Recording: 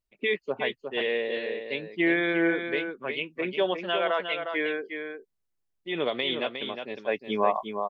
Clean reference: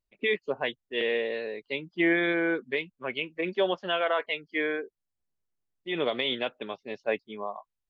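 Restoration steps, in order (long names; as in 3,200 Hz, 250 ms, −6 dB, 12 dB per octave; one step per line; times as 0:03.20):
echo removal 359 ms −7 dB
level 0 dB, from 0:07.24 −11.5 dB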